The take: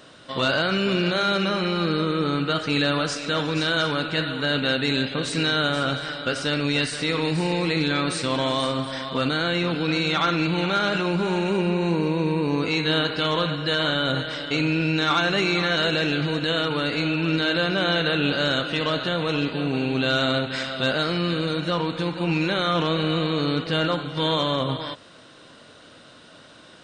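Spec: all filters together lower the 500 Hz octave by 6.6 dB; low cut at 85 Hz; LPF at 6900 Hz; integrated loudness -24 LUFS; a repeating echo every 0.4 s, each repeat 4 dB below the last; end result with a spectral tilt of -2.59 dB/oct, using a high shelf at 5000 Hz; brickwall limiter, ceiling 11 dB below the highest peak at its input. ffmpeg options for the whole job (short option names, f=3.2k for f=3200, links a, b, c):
-af "highpass=85,lowpass=6.9k,equalizer=f=500:t=o:g=-8.5,highshelf=f=5k:g=9,alimiter=limit=-21.5dB:level=0:latency=1,aecho=1:1:400|800|1200|1600|2000|2400|2800|3200|3600:0.631|0.398|0.25|0.158|0.0994|0.0626|0.0394|0.0249|0.0157,volume=3dB"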